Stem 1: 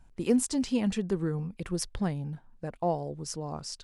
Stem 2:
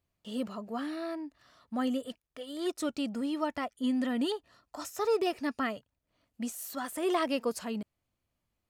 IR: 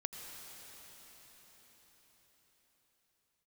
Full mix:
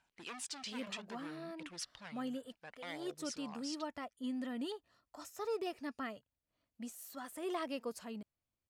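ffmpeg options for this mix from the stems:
-filter_complex "[0:a]volume=30dB,asoftclip=hard,volume=-30dB,aphaser=in_gain=1:out_gain=1:delay=2:decay=0.35:speed=0.64:type=triangular,bandpass=frequency=2900:width_type=q:width=0.9:csg=0,volume=-1.5dB[link_01];[1:a]adelay=400,volume=-10dB[link_02];[link_01][link_02]amix=inputs=2:normalize=0"

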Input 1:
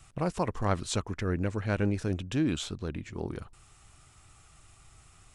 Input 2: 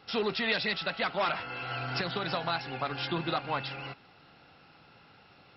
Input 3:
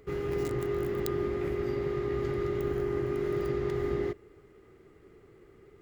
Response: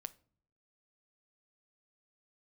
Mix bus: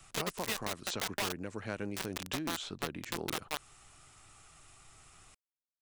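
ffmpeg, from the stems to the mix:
-filter_complex "[0:a]acrossover=split=100|6000[link_01][link_02][link_03];[link_01]acompressor=threshold=-55dB:ratio=4[link_04];[link_02]acompressor=threshold=-34dB:ratio=4[link_05];[link_03]acompressor=threshold=-56dB:ratio=4[link_06];[link_04][link_05][link_06]amix=inputs=3:normalize=0,equalizer=frequency=62:width_type=o:width=2.9:gain=-8.5,volume=1dB[link_07];[1:a]acrusher=bits=3:mix=0:aa=0.000001,volume=-4.5dB[link_08];[link_07][link_08]amix=inputs=2:normalize=0,alimiter=limit=-21.5dB:level=0:latency=1:release=364"

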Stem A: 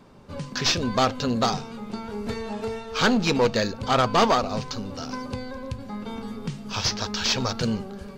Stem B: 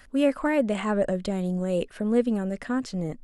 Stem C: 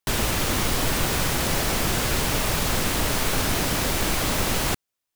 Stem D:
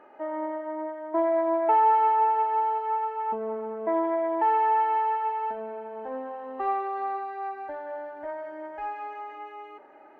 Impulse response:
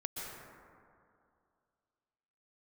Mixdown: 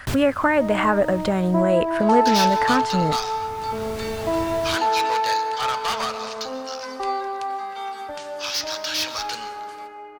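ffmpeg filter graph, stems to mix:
-filter_complex "[0:a]highpass=1400,asoftclip=type=tanh:threshold=-25dB,adelay=1700,volume=2.5dB,asplit=2[link_01][link_02];[link_02]volume=-8dB[link_03];[1:a]equalizer=frequency=1300:width_type=o:width=2.4:gain=13.5,acompressor=threshold=-23dB:ratio=2,volume=3dB,asplit=2[link_04][link_05];[2:a]highshelf=frequency=8100:gain=-5.5,volume=-1.5dB,afade=type=out:start_time=1.14:duration=0.59:silence=0.266073[link_06];[3:a]lowshelf=frequency=210:gain=6.5,adelay=400,volume=-0.5dB,asplit=2[link_07][link_08];[link_08]volume=-10.5dB[link_09];[link_05]apad=whole_len=227198[link_10];[link_06][link_10]sidechaincompress=threshold=-36dB:ratio=8:attack=5.3:release=771[link_11];[4:a]atrim=start_sample=2205[link_12];[link_03][link_09]amix=inputs=2:normalize=0[link_13];[link_13][link_12]afir=irnorm=-1:irlink=0[link_14];[link_01][link_04][link_11][link_07][link_14]amix=inputs=5:normalize=0,equalizer=frequency=97:width=1.2:gain=11"

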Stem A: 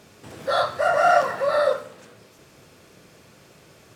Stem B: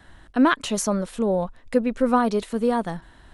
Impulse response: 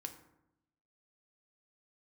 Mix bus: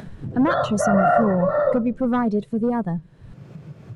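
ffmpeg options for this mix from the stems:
-filter_complex "[0:a]lowpass=frequency=1400:poles=1,lowshelf=frequency=170:gain=5.5,volume=0dB[link_01];[1:a]asoftclip=type=hard:threshold=-16dB,volume=-2.5dB[link_02];[link_01][link_02]amix=inputs=2:normalize=0,afftdn=noise_reduction=15:noise_floor=-33,equalizer=frequency=150:width_type=o:width=1.3:gain=11.5,acompressor=mode=upward:threshold=-24dB:ratio=2.5"

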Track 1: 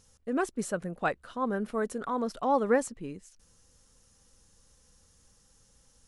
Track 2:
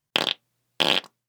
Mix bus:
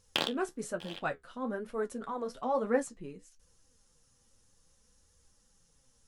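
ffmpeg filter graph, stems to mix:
ffmpeg -i stem1.wav -i stem2.wav -filter_complex "[0:a]flanger=delay=1.7:depth=7.6:regen=43:speed=0.58:shape=triangular,volume=3dB,asplit=2[link_01][link_02];[1:a]acontrast=61,volume=-8dB[link_03];[link_02]apad=whole_len=56533[link_04];[link_03][link_04]sidechaincompress=threshold=-47dB:ratio=16:attack=8.7:release=519[link_05];[link_01][link_05]amix=inputs=2:normalize=0,flanger=delay=9.5:depth=6.4:regen=-53:speed=1.1:shape=triangular" out.wav

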